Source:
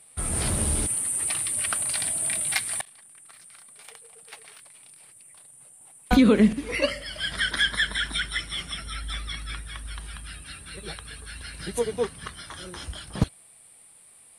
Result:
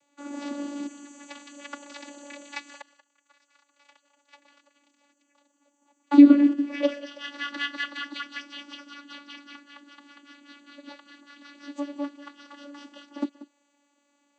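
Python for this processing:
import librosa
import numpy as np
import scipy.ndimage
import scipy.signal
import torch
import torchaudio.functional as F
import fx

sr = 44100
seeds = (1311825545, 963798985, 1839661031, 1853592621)

y = fx.peak_eq(x, sr, hz=230.0, db=-11.5, octaves=1.9, at=(2.73, 4.36))
y = fx.vocoder(y, sr, bands=16, carrier='saw', carrier_hz=286.0)
y = y + 10.0 ** (-16.5 / 20.0) * np.pad(y, (int(186 * sr / 1000.0), 0))[:len(y)]
y = y * librosa.db_to_amplitude(2.5)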